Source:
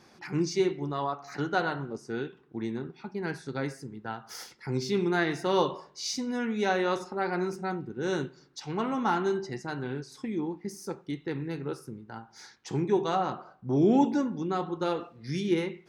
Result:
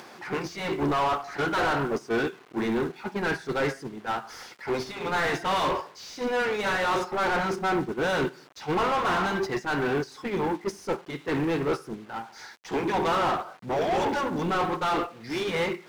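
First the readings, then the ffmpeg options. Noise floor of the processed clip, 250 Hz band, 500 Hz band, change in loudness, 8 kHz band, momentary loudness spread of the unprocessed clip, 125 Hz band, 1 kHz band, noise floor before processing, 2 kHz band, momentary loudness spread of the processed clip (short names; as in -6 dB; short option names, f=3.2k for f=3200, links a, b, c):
-51 dBFS, -1.0 dB, +2.5 dB, +3.0 dB, 0.0 dB, 12 LU, -0.5 dB, +6.0 dB, -59 dBFS, +7.0 dB, 8 LU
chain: -filter_complex "[0:a]afftfilt=real='re*lt(hypot(re,im),0.251)':imag='im*lt(hypot(re,im),0.251)':win_size=1024:overlap=0.75,acrusher=bits=9:mix=0:aa=0.000001,asplit=2[a][b];[b]highpass=f=720:p=1,volume=32dB,asoftclip=type=tanh:threshold=-16.5dB[c];[a][c]amix=inputs=2:normalize=0,lowpass=f=1.7k:p=1,volume=-6dB,agate=range=-11dB:threshold=-26dB:ratio=16:detection=peak,acompressor=mode=upward:threshold=-42dB:ratio=2.5"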